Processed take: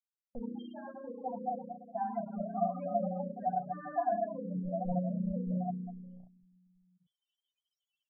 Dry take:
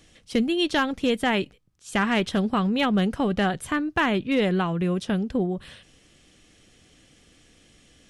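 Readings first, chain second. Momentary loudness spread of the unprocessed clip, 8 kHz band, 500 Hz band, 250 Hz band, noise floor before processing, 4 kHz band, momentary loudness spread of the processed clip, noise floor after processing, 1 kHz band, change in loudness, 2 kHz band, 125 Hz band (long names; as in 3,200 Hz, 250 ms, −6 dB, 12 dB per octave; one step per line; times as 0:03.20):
5 LU, below −35 dB, −10.0 dB, −13.5 dB, −58 dBFS, below −35 dB, 12 LU, below −85 dBFS, −6.0 dB, −12.0 dB, −29.0 dB, −9.5 dB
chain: spike at every zero crossing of −23 dBFS
spring reverb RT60 2.9 s, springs 33 ms, chirp 30 ms, DRR −7 dB
brickwall limiter −10.5 dBFS, peak gain reduction 7 dB
mains-hum notches 50/100 Hz
power curve on the samples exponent 3
spectral peaks only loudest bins 8
comb filter 4.1 ms, depth 42%
low-pass that shuts in the quiet parts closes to 360 Hz, open at −25.5 dBFS
noise gate −48 dBFS, range −25 dB
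drawn EQ curve 130 Hz 0 dB, 400 Hz −27 dB, 690 Hz +13 dB, 1,100 Hz −15 dB
reversed playback
upward compression, threshold −43 dBFS
reversed playback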